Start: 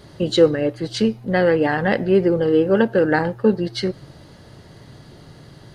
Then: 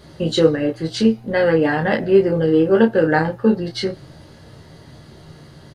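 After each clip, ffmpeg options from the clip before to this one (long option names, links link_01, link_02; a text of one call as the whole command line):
ffmpeg -i in.wav -af "aecho=1:1:13|31:0.562|0.531,volume=-1dB" out.wav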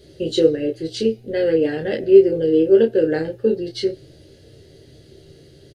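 ffmpeg -i in.wav -af "firequalizer=gain_entry='entry(120,0);entry(180,-8);entry(390,8);entry(1000,-21);entry(1500,-8);entry(2800,1)':delay=0.05:min_phase=1,volume=-4dB" out.wav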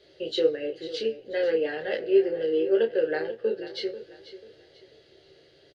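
ffmpeg -i in.wav -filter_complex "[0:a]acrossover=split=470 4800:gain=0.112 1 0.0708[link_01][link_02][link_03];[link_01][link_02][link_03]amix=inputs=3:normalize=0,aecho=1:1:490|980|1470:0.188|0.064|0.0218,volume=-2dB" out.wav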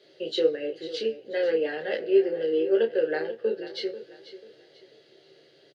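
ffmpeg -i in.wav -af "highpass=frequency=140:width=0.5412,highpass=frequency=140:width=1.3066" out.wav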